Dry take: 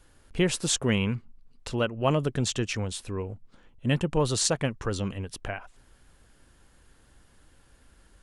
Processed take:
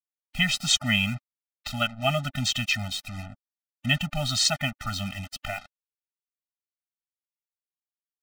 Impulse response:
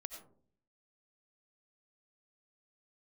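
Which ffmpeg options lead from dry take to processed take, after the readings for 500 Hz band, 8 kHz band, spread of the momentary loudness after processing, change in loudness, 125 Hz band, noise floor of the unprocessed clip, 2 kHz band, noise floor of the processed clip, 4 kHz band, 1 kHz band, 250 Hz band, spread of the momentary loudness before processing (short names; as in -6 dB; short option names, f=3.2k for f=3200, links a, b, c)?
-6.5 dB, 0.0 dB, 16 LU, +2.5 dB, -2.0 dB, -60 dBFS, +7.0 dB, under -85 dBFS, +7.5 dB, +1.0 dB, -3.0 dB, 13 LU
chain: -af "lowpass=3.6k,tiltshelf=f=1.4k:g=-9.5,acrusher=bits=6:mix=0:aa=0.5,afftfilt=real='re*eq(mod(floor(b*sr/1024/300),2),0)':imag='im*eq(mod(floor(b*sr/1024/300),2),0)':win_size=1024:overlap=0.75,volume=7.5dB"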